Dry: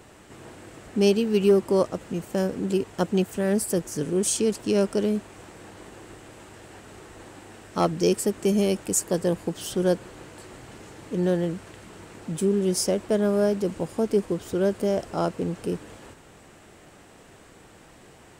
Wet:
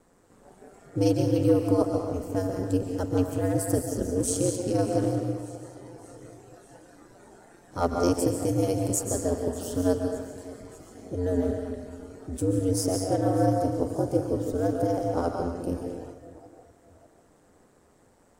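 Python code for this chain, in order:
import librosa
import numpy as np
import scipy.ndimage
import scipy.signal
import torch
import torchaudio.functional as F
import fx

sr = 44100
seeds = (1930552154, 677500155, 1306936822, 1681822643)

y = fx.peak_eq(x, sr, hz=2800.0, db=-11.5, octaves=1.2)
y = fx.rev_freeverb(y, sr, rt60_s=1.1, hf_ratio=0.85, predelay_ms=100, drr_db=2.5)
y = y * np.sin(2.0 * np.pi * 90.0 * np.arange(len(y)) / sr)
y = fx.echo_feedback(y, sr, ms=594, feedback_pct=58, wet_db=-19.5)
y = fx.noise_reduce_blind(y, sr, reduce_db=8)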